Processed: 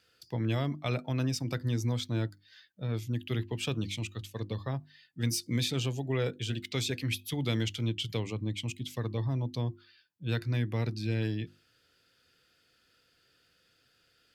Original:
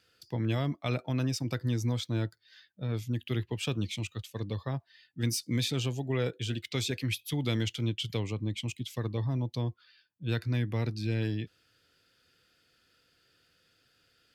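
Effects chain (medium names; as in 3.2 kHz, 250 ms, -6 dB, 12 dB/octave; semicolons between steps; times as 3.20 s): hum notches 50/100/150/200/250/300/350 Hz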